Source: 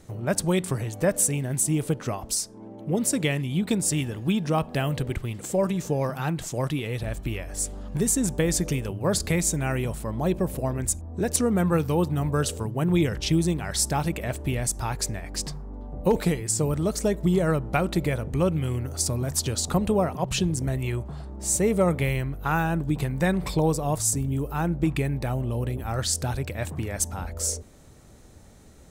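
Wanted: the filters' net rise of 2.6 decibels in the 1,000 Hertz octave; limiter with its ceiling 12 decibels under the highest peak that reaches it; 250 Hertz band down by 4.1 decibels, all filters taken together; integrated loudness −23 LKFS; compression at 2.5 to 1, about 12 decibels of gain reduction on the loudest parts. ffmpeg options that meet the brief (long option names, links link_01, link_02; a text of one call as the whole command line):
ffmpeg -i in.wav -af "equalizer=frequency=250:width_type=o:gain=-7,equalizer=frequency=1000:width_type=o:gain=4,acompressor=threshold=-37dB:ratio=2.5,volume=16.5dB,alimiter=limit=-14dB:level=0:latency=1" out.wav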